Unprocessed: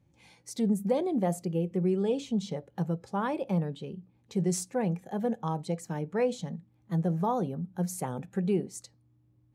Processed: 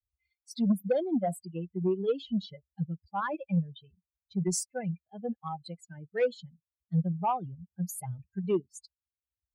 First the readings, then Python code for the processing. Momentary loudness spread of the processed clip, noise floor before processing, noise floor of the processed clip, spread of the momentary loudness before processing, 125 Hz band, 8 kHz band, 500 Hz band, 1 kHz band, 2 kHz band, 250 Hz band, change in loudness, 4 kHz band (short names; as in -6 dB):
13 LU, -66 dBFS, under -85 dBFS, 11 LU, -2.0 dB, +0.5 dB, -1.5 dB, 0.0 dB, +0.5 dB, -2.5 dB, -1.5 dB, -0.5 dB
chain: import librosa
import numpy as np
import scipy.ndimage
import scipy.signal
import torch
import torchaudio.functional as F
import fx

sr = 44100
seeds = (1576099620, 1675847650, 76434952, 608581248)

y = fx.bin_expand(x, sr, power=3.0)
y = fx.cheby_harmonics(y, sr, harmonics=(5, 7), levels_db=(-22, -38), full_scale_db=-20.0)
y = F.gain(torch.from_numpy(y), 4.0).numpy()